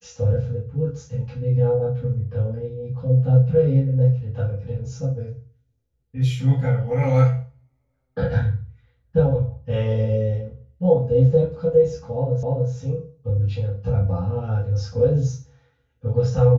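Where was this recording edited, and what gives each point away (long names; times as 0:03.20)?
0:12.43: the same again, the last 0.29 s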